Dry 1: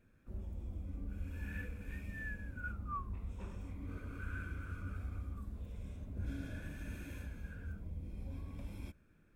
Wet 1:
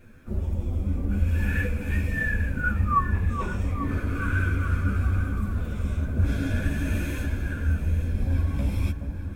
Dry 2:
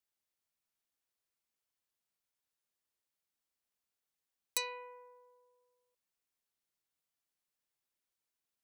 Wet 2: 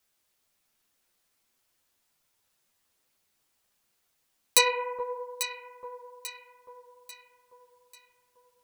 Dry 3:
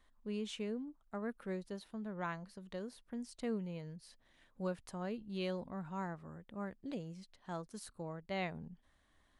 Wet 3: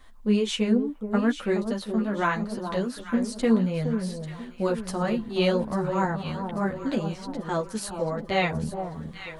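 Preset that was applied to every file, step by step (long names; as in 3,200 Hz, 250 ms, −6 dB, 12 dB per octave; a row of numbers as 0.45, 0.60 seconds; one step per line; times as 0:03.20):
multi-voice chorus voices 4, 1.2 Hz, delay 11 ms, depth 3.3 ms
delay that swaps between a low-pass and a high-pass 421 ms, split 1,100 Hz, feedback 65%, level −7.5 dB
loudness normalisation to −27 LKFS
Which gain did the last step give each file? +20.5, +18.0, +19.0 decibels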